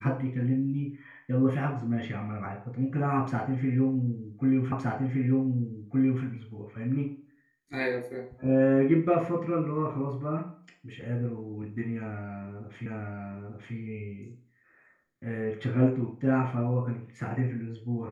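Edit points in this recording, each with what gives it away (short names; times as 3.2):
4.72 repeat of the last 1.52 s
12.86 repeat of the last 0.89 s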